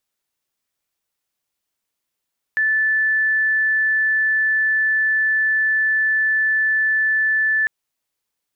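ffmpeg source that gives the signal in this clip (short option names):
-f lavfi -i "aevalsrc='0.178*sin(2*PI*1750*t)':d=5.1:s=44100"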